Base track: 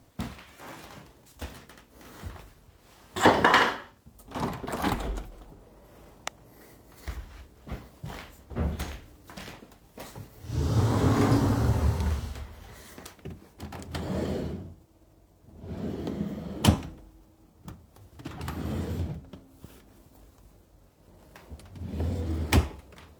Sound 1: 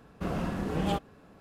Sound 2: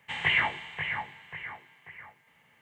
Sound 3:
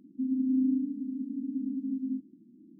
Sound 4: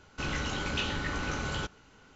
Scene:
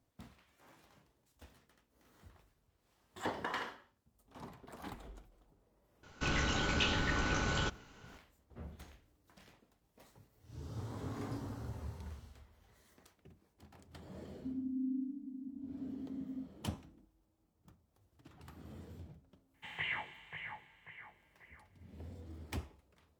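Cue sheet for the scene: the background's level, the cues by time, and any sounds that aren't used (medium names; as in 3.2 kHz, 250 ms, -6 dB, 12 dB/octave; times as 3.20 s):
base track -19.5 dB
6.03 s: add 4 -0.5 dB
14.26 s: add 3 -11 dB
19.54 s: add 2 -13.5 dB
not used: 1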